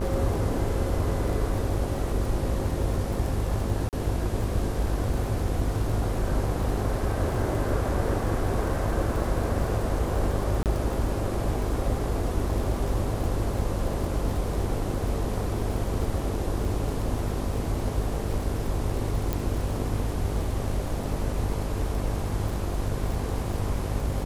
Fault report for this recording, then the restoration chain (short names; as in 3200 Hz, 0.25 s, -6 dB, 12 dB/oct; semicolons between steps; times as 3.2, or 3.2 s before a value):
buzz 50 Hz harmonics 21 -31 dBFS
crackle 45/s -32 dBFS
3.89–3.93 gap 38 ms
10.63–10.66 gap 28 ms
19.33 pop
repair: de-click; de-hum 50 Hz, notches 21; interpolate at 3.89, 38 ms; interpolate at 10.63, 28 ms